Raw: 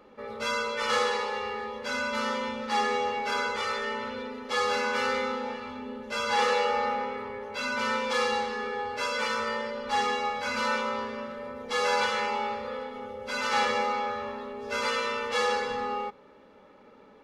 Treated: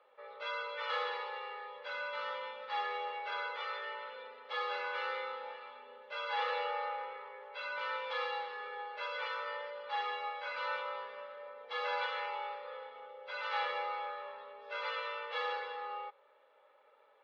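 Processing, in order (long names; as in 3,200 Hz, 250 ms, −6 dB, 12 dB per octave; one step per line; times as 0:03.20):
Chebyshev band-pass filter 540–3,700 Hz, order 3
level −8.5 dB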